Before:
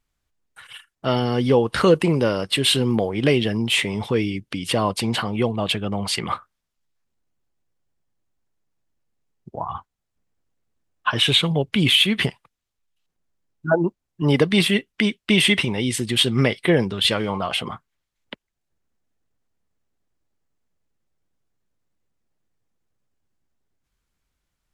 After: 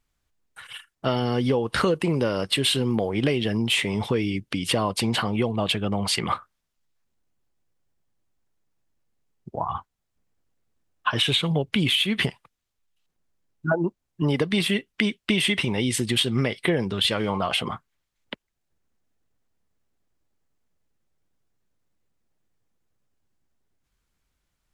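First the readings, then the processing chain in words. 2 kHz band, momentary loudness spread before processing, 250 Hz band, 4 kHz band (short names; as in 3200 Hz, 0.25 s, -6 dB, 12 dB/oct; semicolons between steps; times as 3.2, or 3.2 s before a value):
-3.5 dB, 12 LU, -3.5 dB, -4.0 dB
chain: compressor, threshold -20 dBFS, peak gain reduction 10 dB; gain +1 dB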